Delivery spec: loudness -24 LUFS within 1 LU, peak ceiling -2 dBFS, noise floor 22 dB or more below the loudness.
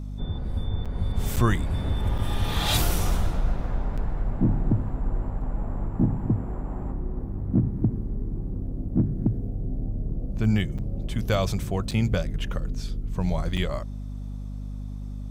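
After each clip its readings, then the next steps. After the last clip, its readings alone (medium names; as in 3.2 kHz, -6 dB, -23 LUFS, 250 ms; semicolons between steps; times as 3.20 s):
dropouts 7; longest dropout 6.4 ms; hum 50 Hz; highest harmonic 250 Hz; hum level -31 dBFS; loudness -28.5 LUFS; peak level -9.5 dBFS; loudness target -24.0 LUFS
-> interpolate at 0.85/1.36/2.18/3.97/10.78/11.91/13.57 s, 6.4 ms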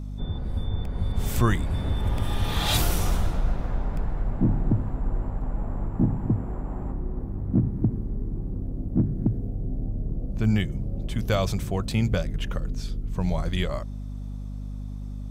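dropouts 0; hum 50 Hz; highest harmonic 250 Hz; hum level -31 dBFS
-> de-hum 50 Hz, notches 5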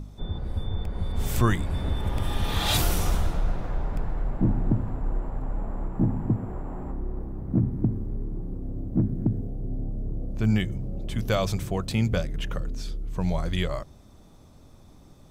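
hum not found; loudness -29.0 LUFS; peak level -9.5 dBFS; loudness target -24.0 LUFS
-> trim +5 dB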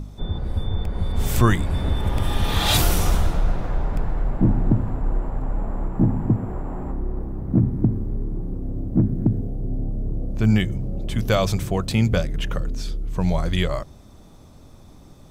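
loudness -24.0 LUFS; peak level -4.5 dBFS; noise floor -46 dBFS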